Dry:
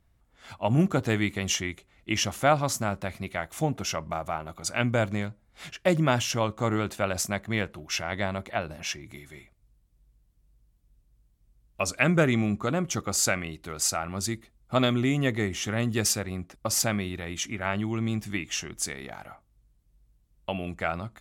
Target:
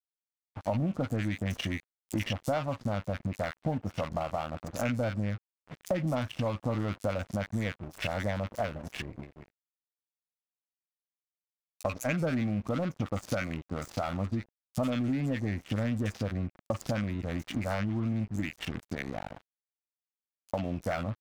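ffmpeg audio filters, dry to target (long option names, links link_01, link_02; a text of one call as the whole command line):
ffmpeg -i in.wav -filter_complex "[0:a]equalizer=frequency=100:width_type=o:width=0.33:gain=5,equalizer=frequency=250:width_type=o:width=0.33:gain=5,equalizer=frequency=400:width_type=o:width=0.33:gain=-11,asplit=2[link_01][link_02];[link_02]asoftclip=type=hard:threshold=-25dB,volume=-4dB[link_03];[link_01][link_03]amix=inputs=2:normalize=0,agate=range=-33dB:threshold=-46dB:ratio=3:detection=peak,adynamicsmooth=sensitivity=1.5:basefreq=710,equalizer=frequency=520:width=1.8:gain=4,acrossover=split=1200|5900[link_04][link_05][link_06];[link_04]adelay=50[link_07];[link_05]adelay=90[link_08];[link_07][link_08][link_06]amix=inputs=3:normalize=0,aeval=exprs='sgn(val(0))*max(abs(val(0))-0.00668,0)':channel_layout=same,acompressor=threshold=-33dB:ratio=5,volume=4dB" out.wav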